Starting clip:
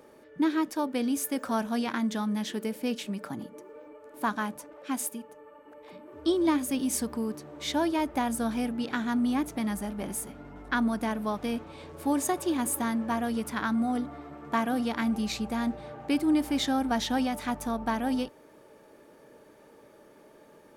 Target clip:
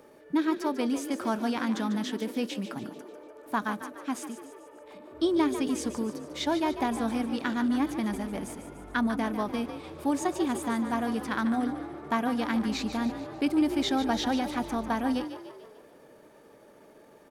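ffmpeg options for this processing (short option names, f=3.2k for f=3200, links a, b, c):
-filter_complex "[0:a]atempo=1.2,acrossover=split=6900[a][b];[b]acompressor=threshold=-51dB:ratio=4:attack=1:release=60[c];[a][c]amix=inputs=2:normalize=0,asplit=7[d][e][f][g][h][i][j];[e]adelay=147,afreqshift=43,volume=-10.5dB[k];[f]adelay=294,afreqshift=86,volume=-16.2dB[l];[g]adelay=441,afreqshift=129,volume=-21.9dB[m];[h]adelay=588,afreqshift=172,volume=-27.5dB[n];[i]adelay=735,afreqshift=215,volume=-33.2dB[o];[j]adelay=882,afreqshift=258,volume=-38.9dB[p];[d][k][l][m][n][o][p]amix=inputs=7:normalize=0"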